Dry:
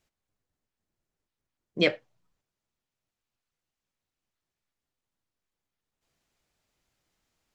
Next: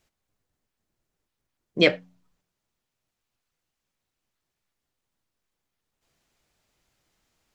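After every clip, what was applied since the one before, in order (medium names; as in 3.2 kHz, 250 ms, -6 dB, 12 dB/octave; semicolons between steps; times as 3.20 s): de-hum 89.68 Hz, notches 3; trim +5 dB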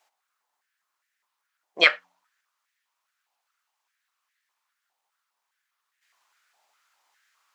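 step-sequenced high-pass 4.9 Hz 810–1800 Hz; trim +2 dB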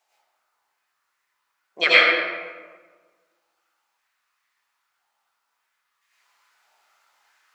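reverberation RT60 1.5 s, pre-delay 77 ms, DRR -10 dB; trim -4 dB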